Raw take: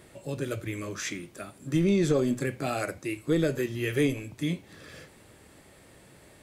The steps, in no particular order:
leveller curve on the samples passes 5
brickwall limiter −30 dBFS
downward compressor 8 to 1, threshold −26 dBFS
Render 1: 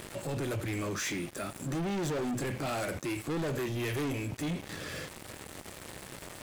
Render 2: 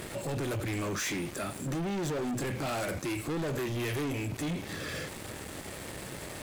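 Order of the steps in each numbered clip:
leveller curve on the samples, then downward compressor, then brickwall limiter
downward compressor, then leveller curve on the samples, then brickwall limiter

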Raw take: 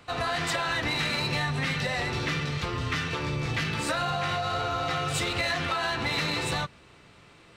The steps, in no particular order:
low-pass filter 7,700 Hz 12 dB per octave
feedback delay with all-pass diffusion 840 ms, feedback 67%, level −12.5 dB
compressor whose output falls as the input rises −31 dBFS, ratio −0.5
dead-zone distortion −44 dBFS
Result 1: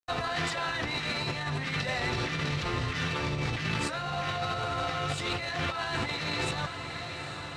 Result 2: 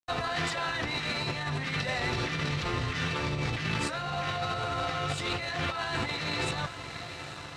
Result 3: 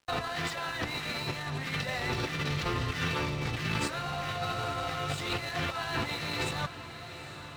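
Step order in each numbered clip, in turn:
dead-zone distortion, then feedback delay with all-pass diffusion, then compressor whose output falls as the input rises, then low-pass filter
feedback delay with all-pass diffusion, then dead-zone distortion, then compressor whose output falls as the input rises, then low-pass filter
compressor whose output falls as the input rises, then low-pass filter, then dead-zone distortion, then feedback delay with all-pass diffusion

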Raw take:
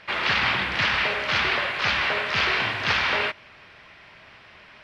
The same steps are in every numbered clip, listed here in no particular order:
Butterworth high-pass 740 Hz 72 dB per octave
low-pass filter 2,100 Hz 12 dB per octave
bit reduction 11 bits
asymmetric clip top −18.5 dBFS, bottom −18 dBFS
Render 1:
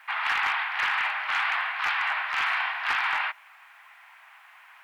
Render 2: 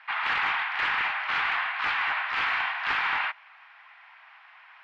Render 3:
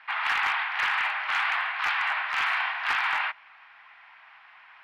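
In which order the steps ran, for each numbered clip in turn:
low-pass filter, then bit reduction, then Butterworth high-pass, then asymmetric clip
bit reduction, then Butterworth high-pass, then asymmetric clip, then low-pass filter
Butterworth high-pass, then bit reduction, then low-pass filter, then asymmetric clip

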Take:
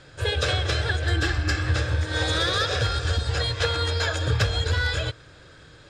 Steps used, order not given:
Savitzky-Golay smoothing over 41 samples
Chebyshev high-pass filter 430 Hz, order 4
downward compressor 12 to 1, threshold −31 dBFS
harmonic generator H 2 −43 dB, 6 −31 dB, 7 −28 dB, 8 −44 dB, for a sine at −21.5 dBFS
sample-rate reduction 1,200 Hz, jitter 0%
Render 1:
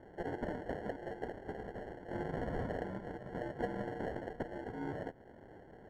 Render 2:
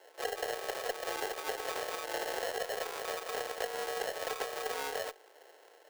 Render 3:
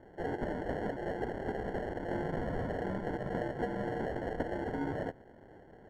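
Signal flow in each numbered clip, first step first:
downward compressor, then Chebyshev high-pass filter, then sample-rate reduction, then harmonic generator, then Savitzky-Golay smoothing
Savitzky-Golay smoothing, then sample-rate reduction, then Chebyshev high-pass filter, then downward compressor, then harmonic generator
harmonic generator, then Chebyshev high-pass filter, then downward compressor, then sample-rate reduction, then Savitzky-Golay smoothing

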